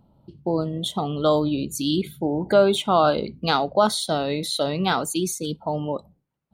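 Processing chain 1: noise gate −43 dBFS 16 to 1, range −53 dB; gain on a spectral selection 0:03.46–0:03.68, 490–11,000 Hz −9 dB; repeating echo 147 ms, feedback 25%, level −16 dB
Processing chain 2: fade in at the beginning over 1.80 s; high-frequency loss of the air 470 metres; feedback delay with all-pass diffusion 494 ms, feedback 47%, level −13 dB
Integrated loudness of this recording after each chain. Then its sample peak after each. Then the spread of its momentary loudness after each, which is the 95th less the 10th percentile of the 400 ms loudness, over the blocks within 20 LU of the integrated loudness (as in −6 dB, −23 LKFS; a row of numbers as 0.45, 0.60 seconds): −23.0, −25.0 LKFS; −6.5, −8.0 dBFS; 9, 16 LU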